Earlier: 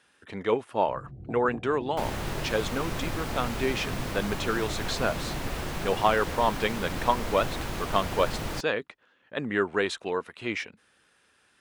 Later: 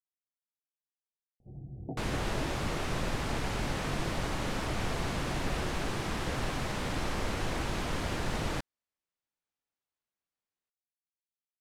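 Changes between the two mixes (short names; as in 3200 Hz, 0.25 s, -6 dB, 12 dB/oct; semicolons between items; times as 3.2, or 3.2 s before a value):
speech: muted; first sound: entry +0.60 s; second sound: add LPF 9600 Hz 12 dB/oct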